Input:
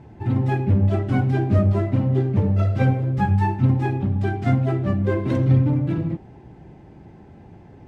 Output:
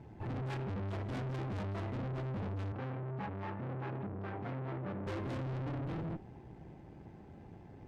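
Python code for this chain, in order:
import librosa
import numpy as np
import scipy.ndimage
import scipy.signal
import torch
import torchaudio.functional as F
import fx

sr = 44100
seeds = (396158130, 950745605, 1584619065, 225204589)

y = fx.tube_stage(x, sr, drive_db=33.0, bias=0.7)
y = fx.bandpass_edges(y, sr, low_hz=120.0, high_hz=2100.0, at=(2.72, 5.07))
y = F.gain(torch.from_numpy(y), -4.0).numpy()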